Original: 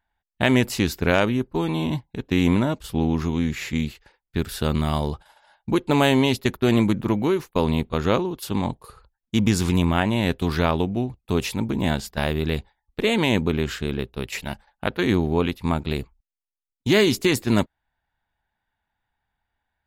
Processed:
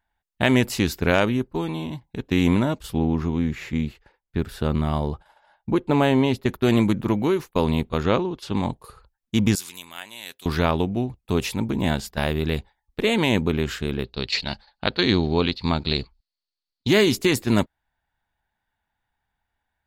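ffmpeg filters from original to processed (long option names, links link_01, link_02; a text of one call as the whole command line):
ffmpeg -i in.wav -filter_complex "[0:a]asettb=1/sr,asplit=3[link_01][link_02][link_03];[link_01]atrim=end=2.984[link_04];[link_02]atrim=start=2.98:end=6.49,asetpts=PTS-STARTPTS,afade=type=in:duration=0.004:curve=qsin,afade=type=out:start_time=3.506:duration=0.004:curve=qsin,highshelf=frequency=2800:gain=-11[link_05];[link_03]atrim=start=6.486[link_06];[link_04][link_05]acrossfade=duration=0.004:curve1=hsin:curve2=qsin[link_07];[link_07][link_06]acrossfade=duration=0.004:curve1=qsin:curve2=hsin,asettb=1/sr,asplit=3[link_08][link_09][link_10];[link_08]atrim=end=8.034[link_11];[link_09]atrim=start=8.03:end=8.56,asetpts=PTS-STARTPTS,afade=type=in:duration=0.004:curve=qsin,afade=type=out:start_time=0.526:duration=0.004:curve=qsin,lowpass=5300[link_12];[link_10]atrim=start=8.556[link_13];[link_11][link_12]acrossfade=duration=0.004:curve1=hsin:curve2=qsin[link_14];[link_14][link_13]acrossfade=duration=0.004:curve1=qsin:curve2=hsin,asettb=1/sr,asplit=3[link_15][link_16][link_17];[link_15]atrim=end=9.554[link_18];[link_16]atrim=start=9.55:end=10.46,asetpts=PTS-STARTPTS,afade=type=in:duration=0.004:curve=qsin,afade=type=out:start_time=0.906:duration=0.004:curve=qsin,aderivative[link_19];[link_17]atrim=start=10.456[link_20];[link_18][link_19]acrossfade=duration=0.004:curve1=hsin:curve2=qsin[link_21];[link_21][link_20]acrossfade=duration=0.004:curve1=qsin:curve2=hsin,asettb=1/sr,asplit=3[link_22][link_23][link_24];[link_22]atrim=end=14.044[link_25];[link_23]atrim=start=14.04:end=16.88,asetpts=PTS-STARTPTS,afade=type=in:duration=0.004:curve=qsin,afade=type=out:start_time=2.836:duration=0.004:curve=qsin,lowpass=frequency=4400:width_type=q:width=9[link_26];[link_24]atrim=start=16.876[link_27];[link_25][link_26]acrossfade=duration=0.004:curve1=hsin:curve2=qsin[link_28];[link_28][link_27]acrossfade=duration=0.004:curve1=qsin:curve2=hsin,asplit=2[link_29][link_30];[link_29]atrim=end=2.01,asetpts=PTS-STARTPTS,afade=type=out:start_time=1.36:duration=0.65:silence=0.354813[link_31];[link_30]atrim=start=2.01,asetpts=PTS-STARTPTS,afade=type=in:duration=0.004:curve=hsin:silence=0.354813[link_32];[link_31][link_32]concat=n=2:v=0:a=1" out.wav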